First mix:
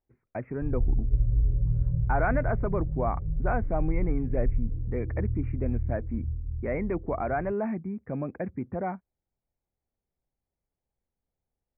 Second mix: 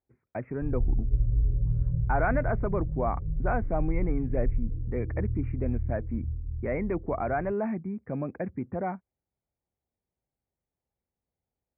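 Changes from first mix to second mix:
speech: add high-pass 56 Hz; background: add Chebyshev low-pass 500 Hz, order 2

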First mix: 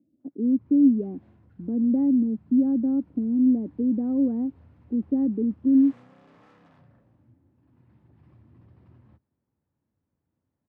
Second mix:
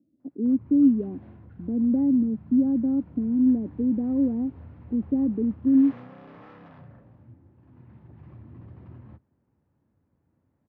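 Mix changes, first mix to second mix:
background +9.5 dB; master: add distance through air 250 m

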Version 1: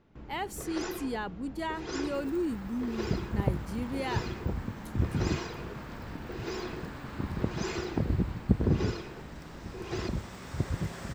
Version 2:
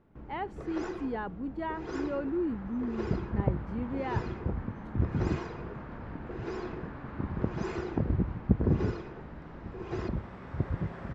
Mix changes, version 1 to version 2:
first sound: remove low-pass 3.5 kHz 12 dB/octave; master: add low-pass 1.7 kHz 12 dB/octave

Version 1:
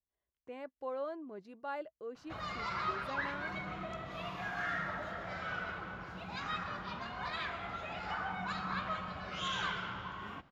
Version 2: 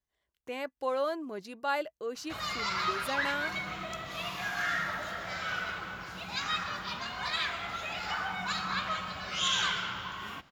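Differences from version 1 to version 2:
speech +6.5 dB; master: remove low-pass 1 kHz 6 dB/octave

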